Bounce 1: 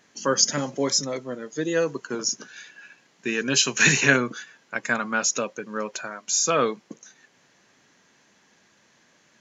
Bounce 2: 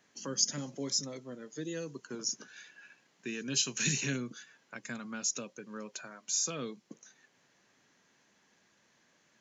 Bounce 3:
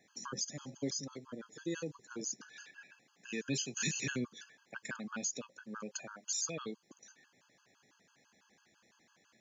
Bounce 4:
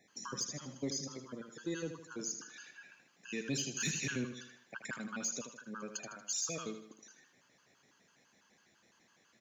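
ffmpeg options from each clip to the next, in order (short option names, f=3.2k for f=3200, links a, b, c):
-filter_complex "[0:a]acrossover=split=330|3000[a][b][c];[b]acompressor=threshold=-38dB:ratio=4[d];[a][d][c]amix=inputs=3:normalize=0,volume=-8.5dB"
-af "alimiter=level_in=1dB:limit=-24dB:level=0:latency=1:release=364,volume=-1dB,afftfilt=real='re*gt(sin(2*PI*6*pts/sr)*(1-2*mod(floor(b*sr/1024/850),2)),0)':imag='im*gt(sin(2*PI*6*pts/sr)*(1-2*mod(floor(b*sr/1024/850),2)),0)':win_size=1024:overlap=0.75,volume=2.5dB"
-af "aecho=1:1:78|156|234|312|390:0.355|0.16|0.0718|0.0323|0.0145,asoftclip=type=tanh:threshold=-25dB"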